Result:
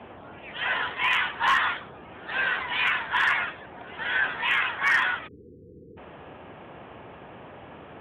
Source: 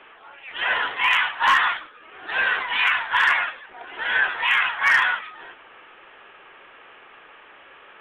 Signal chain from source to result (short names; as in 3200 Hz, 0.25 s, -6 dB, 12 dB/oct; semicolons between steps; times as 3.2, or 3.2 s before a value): band noise 64–910 Hz -41 dBFS; spectral delete 5.28–5.97, 500–8800 Hz; gain -4.5 dB